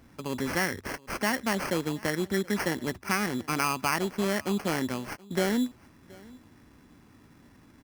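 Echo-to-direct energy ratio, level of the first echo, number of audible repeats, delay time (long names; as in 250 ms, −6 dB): −23.5 dB, −23.5 dB, 1, 726 ms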